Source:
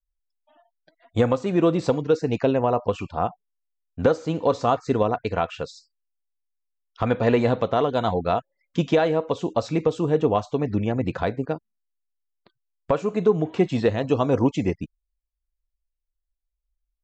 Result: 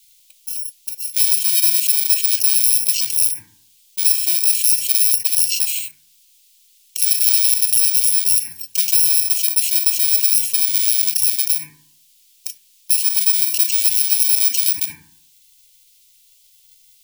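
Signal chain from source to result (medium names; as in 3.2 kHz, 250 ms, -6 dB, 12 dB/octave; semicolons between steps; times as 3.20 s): bit-reversed sample order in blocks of 64 samples; inverse Chebyshev high-pass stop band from 1.4 kHz, stop band 40 dB; FDN reverb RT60 0.63 s, low-frequency decay 1.05×, high-frequency decay 0.25×, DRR 9.5 dB; level flattener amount 70%; trim +2.5 dB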